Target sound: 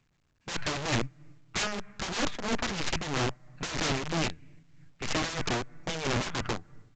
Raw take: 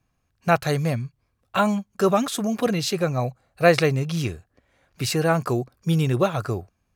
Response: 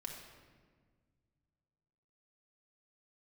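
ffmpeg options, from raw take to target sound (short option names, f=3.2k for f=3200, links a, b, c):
-filter_complex "[0:a]aeval=exprs='0.794*(cos(1*acos(clip(val(0)/0.794,-1,1)))-cos(1*PI/2))+0.0562*(cos(2*acos(clip(val(0)/0.794,-1,1)))-cos(2*PI/2))+0.398*(cos(3*acos(clip(val(0)/0.794,-1,1)))-cos(3*PI/2))+0.158*(cos(8*acos(clip(val(0)/0.794,-1,1)))-cos(8*PI/2))':c=same,acrossover=split=310[a][b];[a]alimiter=limit=-20.5dB:level=0:latency=1:release=25[c];[b]bandpass=f=1.9k:t=q:w=1.4:csg=0[d];[c][d]amix=inputs=2:normalize=0,aecho=1:1:6.7:0.4,asplit=2[e][f];[1:a]atrim=start_sample=2205,asetrate=41454,aresample=44100,lowpass=3.4k[g];[f][g]afir=irnorm=-1:irlink=0,volume=-15dB[h];[e][h]amix=inputs=2:normalize=0,aeval=exprs='(mod(13.3*val(0)+1,2)-1)/13.3':c=same,tremolo=f=3.1:d=0.63" -ar 16000 -c:a pcm_alaw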